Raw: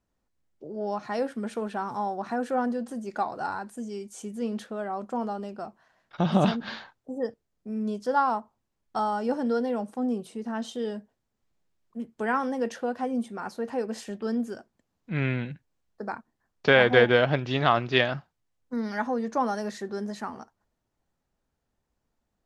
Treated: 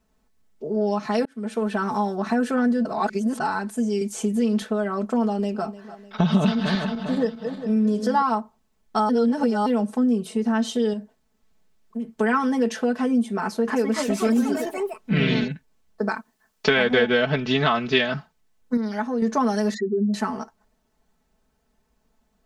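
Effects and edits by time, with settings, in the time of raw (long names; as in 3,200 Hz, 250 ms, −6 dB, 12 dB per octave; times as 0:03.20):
0:01.25–0:01.84: fade in
0:02.85–0:03.40: reverse
0:04.01–0:04.62: multiband upward and downward compressor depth 40%
0:05.24–0:05.65: delay throw 300 ms, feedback 55%, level −17.5 dB
0:06.35–0:08.22: feedback delay that plays each chunk backwards 201 ms, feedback 59%, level −11 dB
0:09.09–0:09.66: reverse
0:10.93–0:12.09: downward compressor, threshold −38 dBFS
0:13.39–0:15.48: delay with pitch and tempo change per echo 285 ms, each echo +3 semitones, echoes 3
0:16.09–0:16.69: spectral tilt +2 dB per octave
0:17.29–0:17.71: low-pass filter 8,300 Hz
0:18.77–0:19.22: clip gain −7.5 dB
0:19.74–0:20.14: expanding power law on the bin magnitudes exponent 3
whole clip: comb filter 4.6 ms, depth 83%; dynamic equaliser 730 Hz, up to −5 dB, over −34 dBFS, Q 0.92; downward compressor 3 to 1, threshold −26 dBFS; level +8 dB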